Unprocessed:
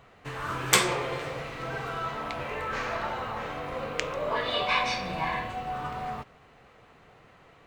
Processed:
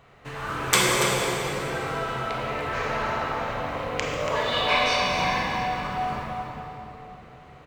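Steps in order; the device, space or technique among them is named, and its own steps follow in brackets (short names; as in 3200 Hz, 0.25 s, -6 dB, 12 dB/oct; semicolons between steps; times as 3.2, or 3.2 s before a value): 4.05–5.43 high shelf 4300 Hz +5.5 dB; cave (echo 0.284 s -8 dB; reverb RT60 3.6 s, pre-delay 27 ms, DRR -1.5 dB)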